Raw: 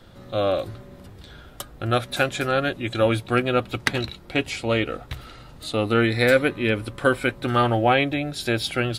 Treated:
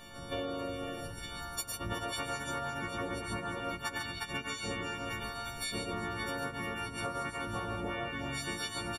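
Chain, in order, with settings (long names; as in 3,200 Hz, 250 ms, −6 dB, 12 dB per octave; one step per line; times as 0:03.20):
every partial snapped to a pitch grid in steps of 4 semitones
on a send: multi-tap delay 95/108/138/355/491 ms −7.5/−7/−4.5/−8.5/−16 dB
on the sum: downward compressor 10 to 1, threshold −30 dBFS, peak gain reduction 21 dB
pitch-shifted copies added −12 semitones −3 dB, −7 semitones −9 dB, −3 semitones −6 dB
echo ahead of the sound 164 ms −18 dB
level −7 dB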